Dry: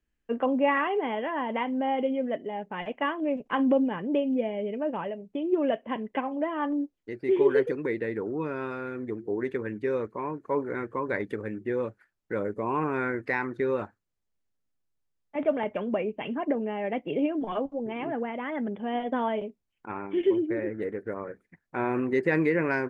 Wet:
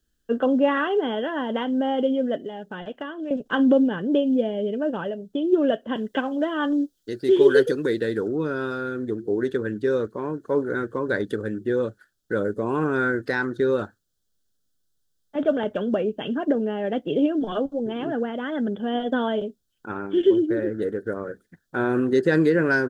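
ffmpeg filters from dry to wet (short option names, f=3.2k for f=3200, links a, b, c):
-filter_complex "[0:a]asettb=1/sr,asplit=3[a][b][c];[a]atrim=end=2.374[d];[b]atrim=start=2.37:end=3.31,asetpts=PTS-STARTPTS,afade=t=in:d=0.004:c=qsin,afade=t=out:st=0.936:d=0.004:c=qsin,acrossover=split=1000|2400[e][f][g];[e]acompressor=threshold=-37dB:ratio=4[h];[f]acompressor=threshold=-45dB:ratio=4[i];[g]acompressor=threshold=-53dB:ratio=4[j];[h][i][j]amix=inputs=3:normalize=0[k];[c]atrim=start=3.306[l];[d][k]acrossfade=d=0.004:c1=hsin:c2=qsin[m];[m][l]acrossfade=d=0.004:c1=qsin:c2=hsin,asettb=1/sr,asplit=3[n][o][p];[n]atrim=end=5.954[q];[o]atrim=start=5.95:end=8.28,asetpts=PTS-STARTPTS,afade=t=in:d=0.004:c=qsin,afade=t=out:st=2.326:d=0.004:c=qsin,highshelf=f=2.3k:g=7.5[r];[p]atrim=start=8.276[s];[q][r]acrossfade=d=0.004:c1=hsin:c2=qsin[t];[t][s]acrossfade=d=0.004:c1=qsin:c2=hsin,firequalizer=gain_entry='entry(470,0);entry(980,-9);entry(1500,4);entry(2200,-16);entry(3300,7)':delay=0.05:min_phase=1,volume=6dB"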